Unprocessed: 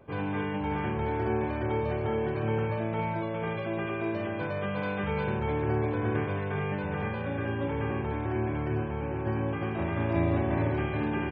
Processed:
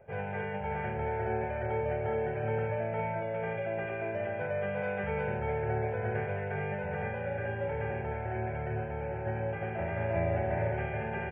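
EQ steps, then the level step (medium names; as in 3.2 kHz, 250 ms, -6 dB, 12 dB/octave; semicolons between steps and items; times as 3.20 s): bass shelf 220 Hz -8 dB; treble shelf 2.4 kHz -11 dB; static phaser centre 1.1 kHz, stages 6; +4.0 dB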